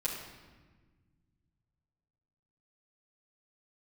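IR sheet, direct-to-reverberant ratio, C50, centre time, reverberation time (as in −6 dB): −8.5 dB, 3.5 dB, 51 ms, 1.4 s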